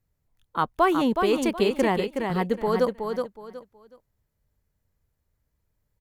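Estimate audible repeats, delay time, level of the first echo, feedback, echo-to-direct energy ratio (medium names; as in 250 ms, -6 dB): 3, 370 ms, -5.5 dB, 25%, -5.0 dB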